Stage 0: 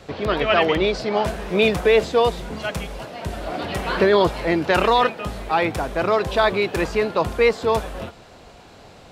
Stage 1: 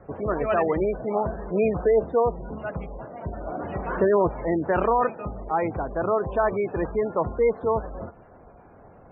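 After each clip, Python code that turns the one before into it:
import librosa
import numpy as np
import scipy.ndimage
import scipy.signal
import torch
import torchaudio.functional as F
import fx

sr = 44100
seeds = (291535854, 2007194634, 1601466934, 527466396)

y = scipy.signal.sosfilt(scipy.signal.butter(2, 1400.0, 'lowpass', fs=sr, output='sos'), x)
y = fx.spec_gate(y, sr, threshold_db=-25, keep='strong')
y = y * librosa.db_to_amplitude(-3.5)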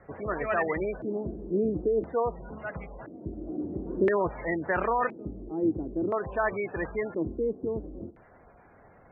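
y = fx.filter_lfo_lowpass(x, sr, shape='square', hz=0.49, low_hz=320.0, high_hz=2000.0, q=4.9)
y = y * librosa.db_to_amplitude(-7.0)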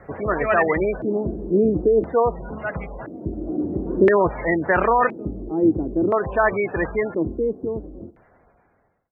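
y = fx.fade_out_tail(x, sr, length_s=2.31)
y = y * librosa.db_to_amplitude(9.0)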